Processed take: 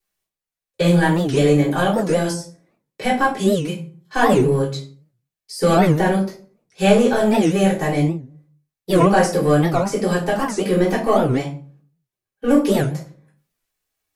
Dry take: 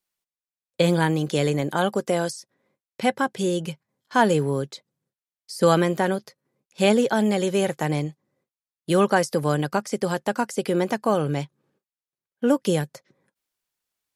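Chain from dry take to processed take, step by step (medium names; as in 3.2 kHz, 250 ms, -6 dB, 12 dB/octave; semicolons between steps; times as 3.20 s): in parallel at -5 dB: hard clipper -19.5 dBFS, distortion -8 dB; on the sum: reverberation RT60 0.45 s, pre-delay 3 ms, DRR -8.5 dB; warped record 78 rpm, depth 250 cents; trim -8.5 dB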